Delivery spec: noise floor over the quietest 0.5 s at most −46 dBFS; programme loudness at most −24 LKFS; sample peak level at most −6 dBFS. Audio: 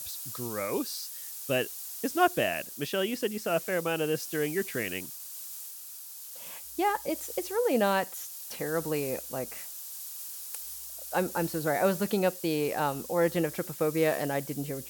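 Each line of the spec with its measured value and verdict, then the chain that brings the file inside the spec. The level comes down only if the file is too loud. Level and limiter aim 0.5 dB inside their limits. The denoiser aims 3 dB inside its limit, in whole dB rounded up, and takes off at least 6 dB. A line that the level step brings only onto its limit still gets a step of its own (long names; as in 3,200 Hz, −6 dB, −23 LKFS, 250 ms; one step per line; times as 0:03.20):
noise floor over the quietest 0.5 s −44 dBFS: out of spec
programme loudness −31.0 LKFS: in spec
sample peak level −11.5 dBFS: in spec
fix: broadband denoise 6 dB, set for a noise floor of −44 dBFS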